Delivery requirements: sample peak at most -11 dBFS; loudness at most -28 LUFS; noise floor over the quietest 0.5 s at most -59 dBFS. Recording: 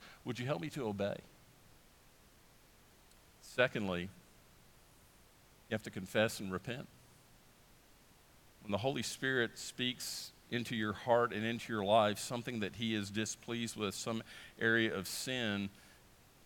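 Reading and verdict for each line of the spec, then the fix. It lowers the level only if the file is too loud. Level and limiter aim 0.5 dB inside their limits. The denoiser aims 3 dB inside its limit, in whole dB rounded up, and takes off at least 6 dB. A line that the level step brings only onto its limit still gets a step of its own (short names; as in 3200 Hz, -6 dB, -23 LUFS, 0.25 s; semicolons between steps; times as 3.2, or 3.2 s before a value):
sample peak -15.0 dBFS: OK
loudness -37.0 LUFS: OK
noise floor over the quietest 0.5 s -64 dBFS: OK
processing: none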